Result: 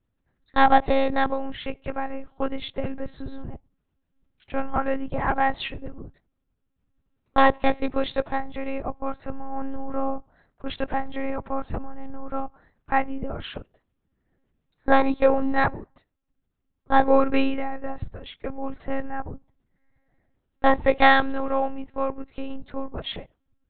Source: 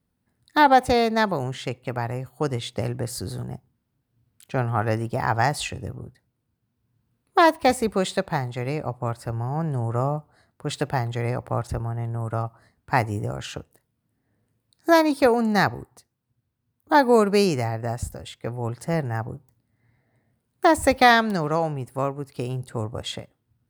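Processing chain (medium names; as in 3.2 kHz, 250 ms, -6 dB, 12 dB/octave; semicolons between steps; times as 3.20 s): monotone LPC vocoder at 8 kHz 270 Hz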